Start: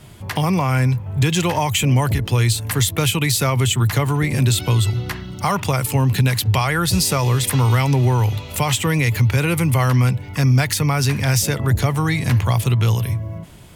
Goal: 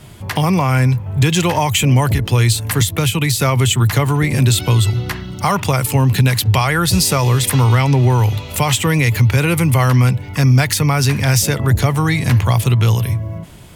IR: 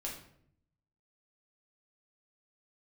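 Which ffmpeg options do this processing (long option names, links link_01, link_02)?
-filter_complex "[0:a]asettb=1/sr,asplit=3[link_01][link_02][link_03];[link_01]atrim=end=2.814[link_04];[link_02]atrim=start=2.81:end=3.4,asetpts=PTS-STARTPTS,afade=type=in:duration=0.004:curve=qsin,afade=type=out:start_time=0.586:duration=0.004:curve=qsin,acrossover=split=230[link_05][link_06];[link_06]acompressor=threshold=-21dB:ratio=3[link_07];[link_05][link_07]amix=inputs=2:normalize=0[link_08];[link_03]atrim=start=3.396[link_09];[link_04][link_08]acrossfade=duration=0.004:curve1=hsin:curve2=qsin[link_10];[link_10][link_09]acrossfade=duration=0.004:curve1=qsin:curve2=hsin,asettb=1/sr,asplit=3[link_11][link_12][link_13];[link_11]atrim=end=7.644[link_14];[link_12]atrim=start=7.64:end=8.1,asetpts=PTS-STARTPTS,afade=type=in:duration=0.004:curve=qsin,afade=type=out:start_time=0.456:duration=0.004:curve=qsin,highshelf=frequency=10000:gain=-11.5[link_15];[link_13]atrim=start=8.096[link_16];[link_14][link_15]acrossfade=duration=0.004:curve1=hsin:curve2=qsin[link_17];[link_17][link_16]acrossfade=duration=0.004:curve1=qsin:curve2=hsin,volume=3.5dB"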